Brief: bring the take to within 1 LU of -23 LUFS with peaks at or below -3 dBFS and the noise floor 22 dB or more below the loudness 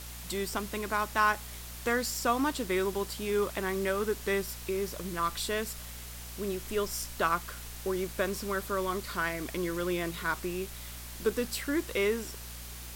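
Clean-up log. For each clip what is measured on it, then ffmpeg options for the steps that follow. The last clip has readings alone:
hum 60 Hz; highest harmonic 240 Hz; hum level -43 dBFS; noise floor -43 dBFS; noise floor target -54 dBFS; loudness -32.0 LUFS; peak level -13.5 dBFS; loudness target -23.0 LUFS
-> -af "bandreject=f=60:t=h:w=4,bandreject=f=120:t=h:w=4,bandreject=f=180:t=h:w=4,bandreject=f=240:t=h:w=4"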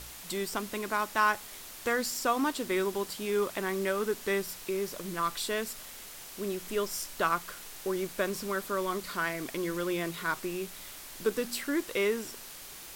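hum not found; noise floor -46 dBFS; noise floor target -54 dBFS
-> -af "afftdn=nr=8:nf=-46"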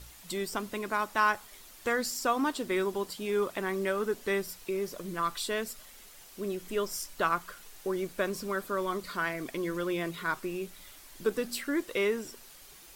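noise floor -52 dBFS; noise floor target -55 dBFS
-> -af "afftdn=nr=6:nf=-52"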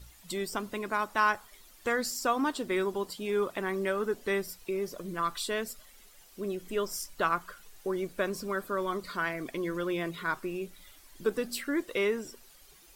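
noise floor -56 dBFS; loudness -32.5 LUFS; peak level -13.5 dBFS; loudness target -23.0 LUFS
-> -af "volume=2.99"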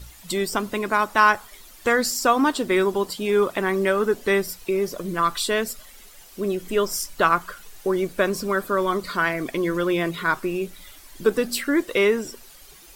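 loudness -23.0 LUFS; peak level -4.0 dBFS; noise floor -47 dBFS

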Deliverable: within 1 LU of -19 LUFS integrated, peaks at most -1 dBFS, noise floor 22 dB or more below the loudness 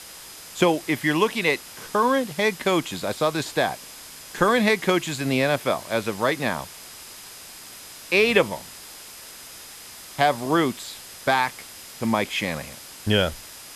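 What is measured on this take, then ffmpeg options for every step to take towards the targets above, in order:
steady tone 5 kHz; tone level -50 dBFS; noise floor -42 dBFS; noise floor target -45 dBFS; loudness -23.0 LUFS; peak level -4.0 dBFS; loudness target -19.0 LUFS
-> -af "bandreject=f=5000:w=30"
-af "afftdn=nr=6:nf=-42"
-af "volume=1.58,alimiter=limit=0.891:level=0:latency=1"

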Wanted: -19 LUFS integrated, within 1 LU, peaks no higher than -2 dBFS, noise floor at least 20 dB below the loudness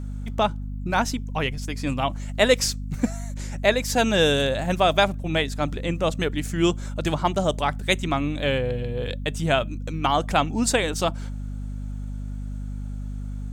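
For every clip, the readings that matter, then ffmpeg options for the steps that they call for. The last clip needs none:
hum 50 Hz; highest harmonic 250 Hz; hum level -29 dBFS; loudness -24.5 LUFS; peak level -4.5 dBFS; loudness target -19.0 LUFS
-> -af "bandreject=f=50:t=h:w=4,bandreject=f=100:t=h:w=4,bandreject=f=150:t=h:w=4,bandreject=f=200:t=h:w=4,bandreject=f=250:t=h:w=4"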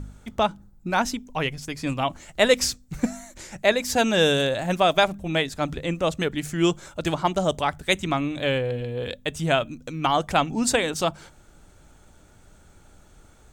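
hum not found; loudness -24.0 LUFS; peak level -5.0 dBFS; loudness target -19.0 LUFS
-> -af "volume=1.78,alimiter=limit=0.794:level=0:latency=1"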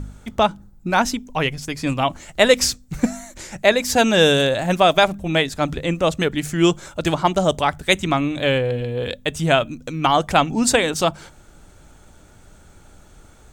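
loudness -19.5 LUFS; peak level -2.0 dBFS; noise floor -49 dBFS

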